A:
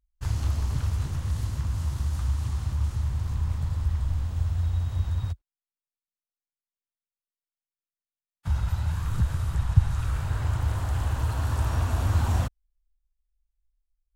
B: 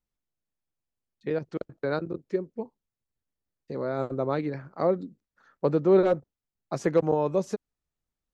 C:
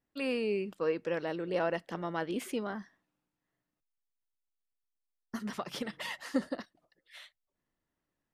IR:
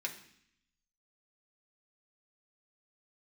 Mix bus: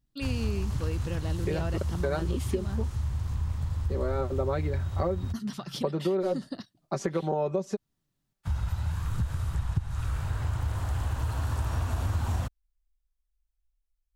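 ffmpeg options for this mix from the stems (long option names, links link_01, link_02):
-filter_complex "[0:a]volume=-2dB[link_01];[1:a]aecho=1:1:5.2:0.64,adelay=200,volume=1dB[link_02];[2:a]equalizer=frequency=125:width_type=o:width=1:gain=12,equalizer=frequency=500:width_type=o:width=1:gain=-9,equalizer=frequency=1000:width_type=o:width=1:gain=-4,equalizer=frequency=2000:width_type=o:width=1:gain=-9,equalizer=frequency=4000:width_type=o:width=1:gain=5,volume=2.5dB[link_03];[link_02][link_03]amix=inputs=2:normalize=0,alimiter=limit=-13dB:level=0:latency=1:release=371,volume=0dB[link_04];[link_01][link_04]amix=inputs=2:normalize=0,acompressor=threshold=-24dB:ratio=6"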